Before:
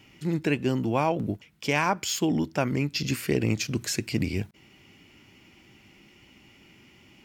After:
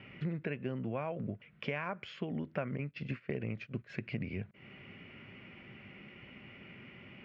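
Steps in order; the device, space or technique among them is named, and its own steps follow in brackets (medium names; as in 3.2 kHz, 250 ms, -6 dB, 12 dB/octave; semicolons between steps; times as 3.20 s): 2.77–3.93 s: gate -28 dBFS, range -16 dB; bass amplifier (compression 5:1, threshold -39 dBFS, peak gain reduction 18 dB; cabinet simulation 68–2400 Hz, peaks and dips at 75 Hz -8 dB, 310 Hz -10 dB, 560 Hz +3 dB, 870 Hz -9 dB); treble shelf 5.6 kHz +5.5 dB; trim +5.5 dB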